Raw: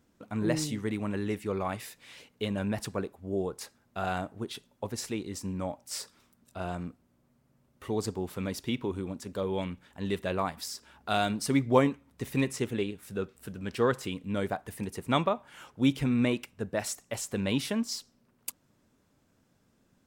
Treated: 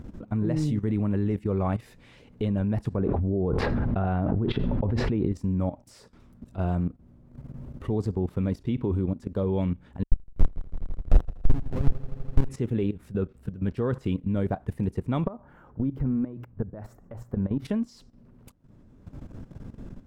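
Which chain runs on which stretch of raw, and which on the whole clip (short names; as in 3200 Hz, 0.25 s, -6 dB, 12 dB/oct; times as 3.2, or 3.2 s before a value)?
2.97–5.32 air absorption 380 m + fast leveller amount 100%
10.03–12.49 Schmitt trigger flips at -21 dBFS + multi-head echo 82 ms, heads first and second, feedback 69%, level -21 dB
15.27–17.65 band shelf 4900 Hz -16 dB 2.6 oct + notches 60/120 Hz + compressor 4:1, threshold -34 dBFS
whole clip: upward compressor, threshold -37 dBFS; tilt -4 dB/oct; level quantiser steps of 14 dB; gain +3 dB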